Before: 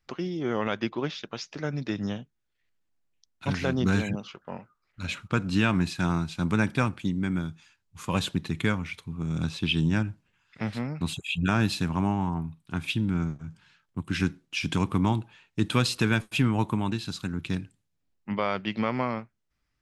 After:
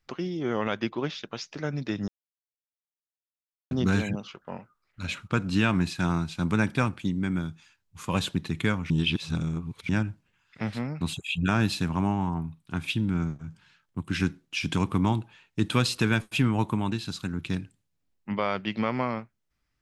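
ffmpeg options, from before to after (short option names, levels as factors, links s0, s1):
-filter_complex "[0:a]asplit=5[s0][s1][s2][s3][s4];[s0]atrim=end=2.08,asetpts=PTS-STARTPTS,afade=t=out:st=2.076:d=0.004:c=hsin[s5];[s1]atrim=start=2.08:end=3.71,asetpts=PTS-STARTPTS,volume=0[s6];[s2]atrim=start=3.71:end=8.902,asetpts=PTS-STARTPTS,afade=t=in:d=0.004:c=hsin[s7];[s3]atrim=start=8.898:end=9.892,asetpts=PTS-STARTPTS,areverse[s8];[s4]atrim=start=9.888[s9];[s5][s6][s7]concat=n=3:v=0:a=1[s10];[s10][s8]acrossfade=d=0.004:c1=hsin:c2=hsin[s11];[s11][s9]acrossfade=d=0.004:c1=hsin:c2=hsin"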